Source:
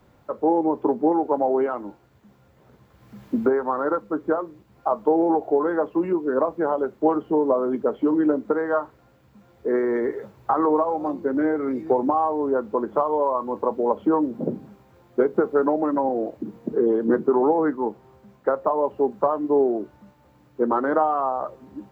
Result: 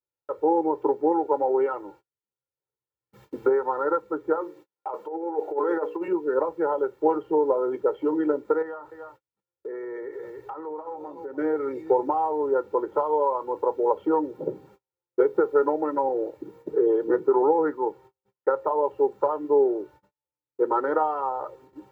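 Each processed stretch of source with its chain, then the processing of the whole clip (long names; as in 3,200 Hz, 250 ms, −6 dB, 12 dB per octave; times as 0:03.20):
0:04.41–0:06.08: high-pass filter 240 Hz + mains-hum notches 60/120/180/240/300/360/420/480/540 Hz + compressor whose output falls as the input rises −24 dBFS, ratio −0.5
0:08.62–0:11.38: single-tap delay 294 ms −15 dB + downward compressor 4 to 1, threshold −32 dBFS
whole clip: noise gate −45 dBFS, range −39 dB; low-shelf EQ 110 Hz −12 dB; comb filter 2.2 ms, depth 92%; level −4.5 dB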